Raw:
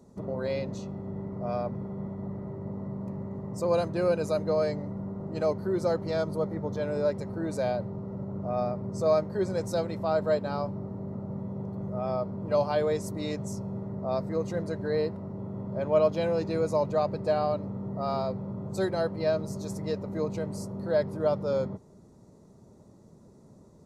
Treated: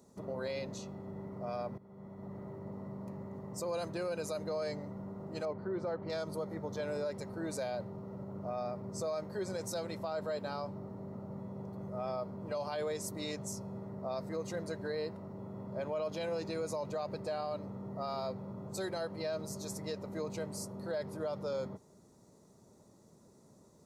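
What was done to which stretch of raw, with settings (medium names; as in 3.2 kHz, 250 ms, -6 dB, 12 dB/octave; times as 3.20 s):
1.78–2.39 s: fade in, from -17.5 dB
5.45–6.10 s: low-pass 2.1 kHz
whole clip: tilt EQ +2 dB/octave; peak limiter -25.5 dBFS; trim -3.5 dB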